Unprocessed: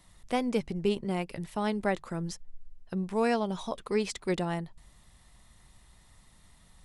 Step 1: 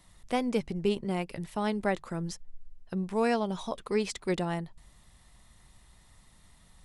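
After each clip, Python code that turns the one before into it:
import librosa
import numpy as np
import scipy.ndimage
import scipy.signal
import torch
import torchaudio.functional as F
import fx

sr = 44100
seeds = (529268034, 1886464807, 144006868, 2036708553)

y = x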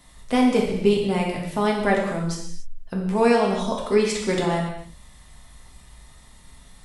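y = fx.rev_gated(x, sr, seeds[0], gate_ms=320, shape='falling', drr_db=-2.0)
y = y * librosa.db_to_amplitude(5.5)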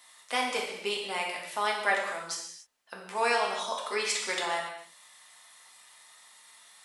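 y = scipy.signal.sosfilt(scipy.signal.butter(2, 970.0, 'highpass', fs=sr, output='sos'), x)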